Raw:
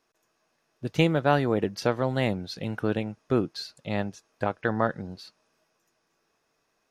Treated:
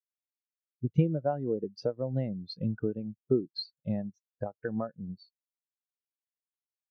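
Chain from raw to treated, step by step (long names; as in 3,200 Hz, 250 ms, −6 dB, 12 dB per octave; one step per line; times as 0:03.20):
high-shelf EQ 4,000 Hz +5 dB
downward compressor 6 to 1, threshold −30 dBFS, peak gain reduction 14 dB
every bin expanded away from the loudest bin 2.5 to 1
level +3.5 dB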